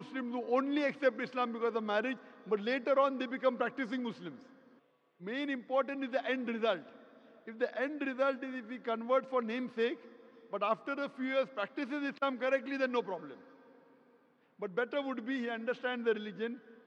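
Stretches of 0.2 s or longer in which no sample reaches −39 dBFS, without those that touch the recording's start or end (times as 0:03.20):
0:02.14–0:02.49
0:04.29–0:05.27
0:06.78–0:07.48
0:09.94–0:10.53
0:13.33–0:14.62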